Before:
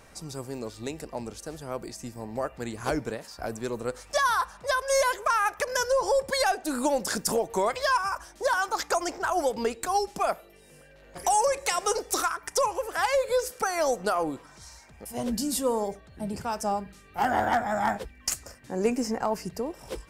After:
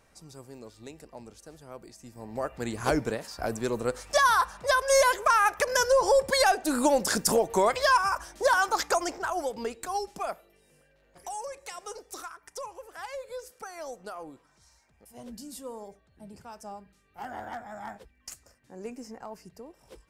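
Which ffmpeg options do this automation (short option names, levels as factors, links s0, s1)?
-af "volume=1.33,afade=t=in:st=2.04:d=0.72:silence=0.237137,afade=t=out:st=8.68:d=0.74:silence=0.398107,afade=t=out:st=10.04:d=1.18:silence=0.375837"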